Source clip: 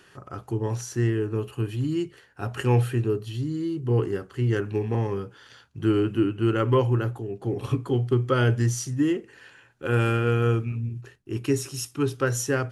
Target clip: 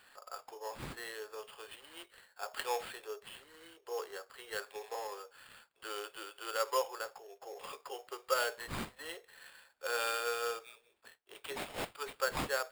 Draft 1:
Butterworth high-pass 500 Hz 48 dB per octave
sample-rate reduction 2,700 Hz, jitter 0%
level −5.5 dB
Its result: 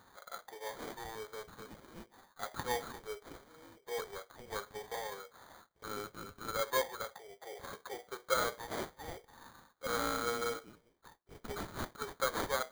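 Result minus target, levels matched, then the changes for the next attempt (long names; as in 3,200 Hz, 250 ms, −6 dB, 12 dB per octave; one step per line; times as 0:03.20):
sample-rate reduction: distortion +8 dB
change: sample-rate reduction 6,000 Hz, jitter 0%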